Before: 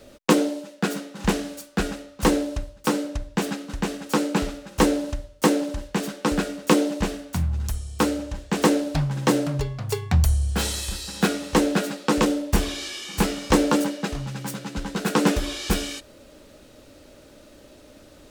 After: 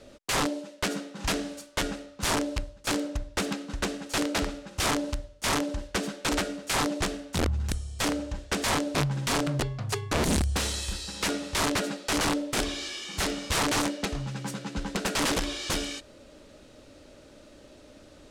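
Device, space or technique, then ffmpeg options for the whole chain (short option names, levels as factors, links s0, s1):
overflowing digital effects unit: -af "aeval=exprs='(mod(7.5*val(0)+1,2)-1)/7.5':c=same,lowpass=9000,volume=0.75"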